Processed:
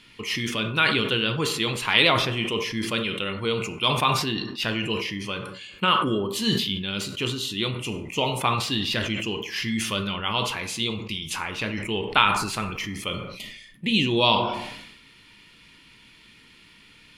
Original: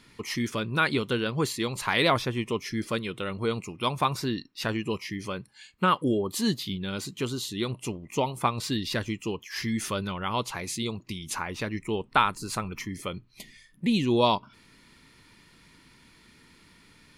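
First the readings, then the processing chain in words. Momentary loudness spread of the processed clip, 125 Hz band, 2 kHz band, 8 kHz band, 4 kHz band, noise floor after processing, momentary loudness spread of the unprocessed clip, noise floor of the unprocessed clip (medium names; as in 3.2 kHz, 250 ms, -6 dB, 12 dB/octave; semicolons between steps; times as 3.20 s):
11 LU, +2.5 dB, +6.5 dB, +2.5 dB, +9.5 dB, -53 dBFS, 10 LU, -58 dBFS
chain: peaking EQ 2.9 kHz +12.5 dB 0.79 oct; plate-style reverb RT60 0.75 s, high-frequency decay 0.45×, DRR 7 dB; decay stretcher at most 50 dB/s; trim -1 dB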